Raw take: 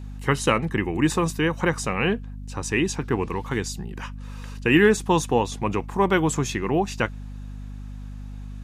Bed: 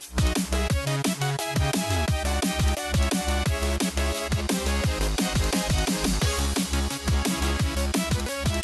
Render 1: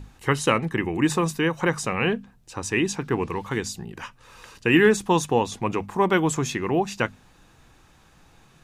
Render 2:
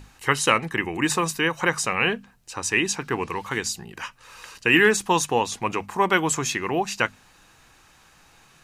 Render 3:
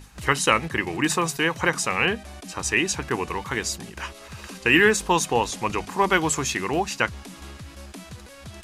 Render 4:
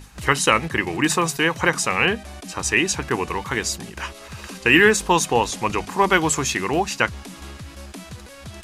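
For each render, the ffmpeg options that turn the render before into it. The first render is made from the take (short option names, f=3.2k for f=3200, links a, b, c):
-af "bandreject=f=50:t=h:w=6,bandreject=f=100:t=h:w=6,bandreject=f=150:t=h:w=6,bandreject=f=200:t=h:w=6,bandreject=f=250:t=h:w=6"
-af "tiltshelf=f=660:g=-5.5,bandreject=f=3.5k:w=16"
-filter_complex "[1:a]volume=-15.5dB[a];[0:a][a]amix=inputs=2:normalize=0"
-af "volume=3dB,alimiter=limit=-1dB:level=0:latency=1"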